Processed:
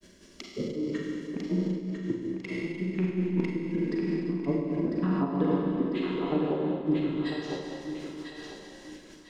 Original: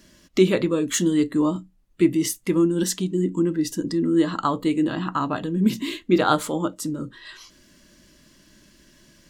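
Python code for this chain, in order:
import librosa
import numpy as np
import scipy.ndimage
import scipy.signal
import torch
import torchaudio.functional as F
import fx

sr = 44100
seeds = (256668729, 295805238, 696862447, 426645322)

p1 = fx.rattle_buzz(x, sr, strikes_db=-25.0, level_db=-11.0)
p2 = fx.env_lowpass_down(p1, sr, base_hz=360.0, full_db=-18.0)
p3 = fx.graphic_eq_31(p2, sr, hz=(125, 400, 1250, 12500), db=(-7, 10, -3, -7))
p4 = fx.over_compress(p3, sr, threshold_db=-24.0, ratio=-0.5)
p5 = fx.granulator(p4, sr, seeds[0], grain_ms=107.0, per_s=5.4, spray_ms=33.0, spread_st=0)
p6 = p5 + fx.echo_thinned(p5, sr, ms=999, feedback_pct=41, hz=470.0, wet_db=-5.0, dry=0)
p7 = fx.rev_schroeder(p6, sr, rt60_s=2.9, comb_ms=33, drr_db=-4.0)
y = fx.am_noise(p7, sr, seeds[1], hz=5.7, depth_pct=60)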